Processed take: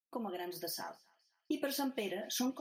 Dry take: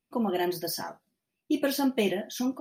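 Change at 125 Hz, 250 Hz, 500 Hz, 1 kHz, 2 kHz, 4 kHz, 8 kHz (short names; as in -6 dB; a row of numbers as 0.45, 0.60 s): -14.5, -10.5, -10.5, -8.5, -9.0, -6.0, -4.0 dB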